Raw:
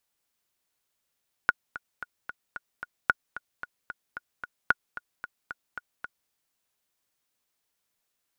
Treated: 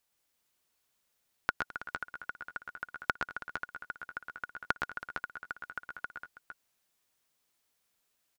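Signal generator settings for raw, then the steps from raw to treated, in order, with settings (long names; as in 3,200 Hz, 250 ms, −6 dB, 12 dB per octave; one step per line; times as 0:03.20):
click track 224 BPM, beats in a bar 6, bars 3, 1,450 Hz, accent 16 dB −6.5 dBFS
downward compressor, threshold −27 dBFS
on a send: multi-tap delay 115/129/212/325/458/471 ms −7/−7.5/−19.5/−15.5/−8/−18 dB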